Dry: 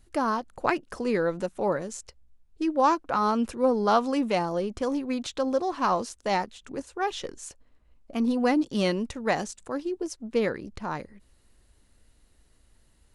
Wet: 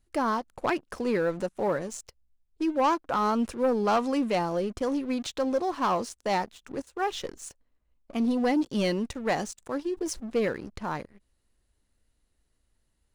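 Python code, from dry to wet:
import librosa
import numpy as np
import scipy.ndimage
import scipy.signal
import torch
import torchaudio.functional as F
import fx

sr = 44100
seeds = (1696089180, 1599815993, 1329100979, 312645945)

y = fx.leveller(x, sr, passes=2)
y = fx.sustainer(y, sr, db_per_s=68.0, at=(9.94, 10.48))
y = F.gain(torch.from_numpy(y), -7.5).numpy()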